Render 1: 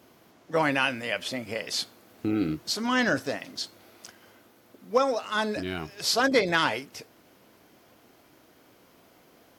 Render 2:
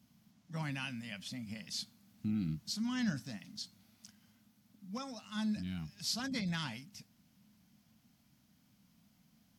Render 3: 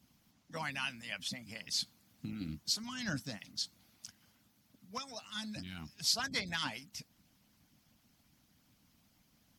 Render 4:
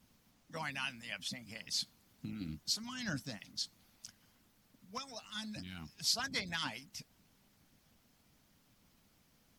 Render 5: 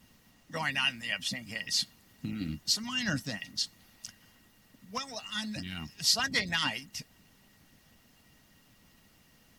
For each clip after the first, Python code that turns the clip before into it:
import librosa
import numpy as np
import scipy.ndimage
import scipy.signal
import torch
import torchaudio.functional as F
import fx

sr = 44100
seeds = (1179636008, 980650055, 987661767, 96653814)

y1 = fx.curve_eq(x, sr, hz=(110.0, 210.0, 380.0, 780.0, 1300.0, 5500.0, 13000.0), db=(0, 6, -27, -15, -15, -4, -7))
y1 = y1 * 10.0 ** (-5.0 / 20.0)
y2 = fx.hpss(y1, sr, part='harmonic', gain_db=-17)
y2 = y2 * 10.0 ** (7.0 / 20.0)
y3 = fx.dmg_noise_colour(y2, sr, seeds[0], colour='pink', level_db=-73.0)
y3 = y3 * 10.0 ** (-1.5 / 20.0)
y4 = fx.small_body(y3, sr, hz=(1900.0, 2800.0), ring_ms=90, db=16)
y4 = y4 * 10.0 ** (7.0 / 20.0)